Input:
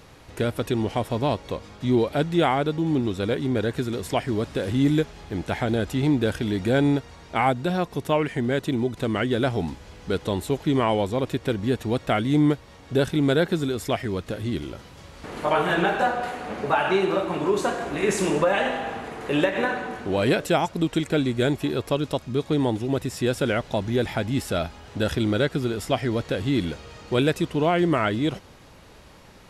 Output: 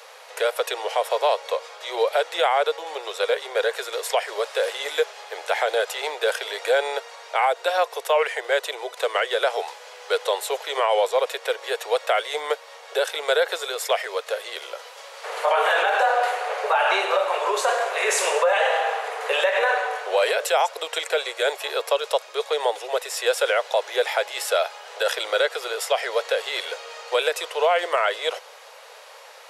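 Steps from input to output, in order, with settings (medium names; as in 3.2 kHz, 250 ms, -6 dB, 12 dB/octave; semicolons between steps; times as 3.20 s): steep high-pass 460 Hz 72 dB/octave; peak limiter -18.5 dBFS, peak gain reduction 8.5 dB; trim +7.5 dB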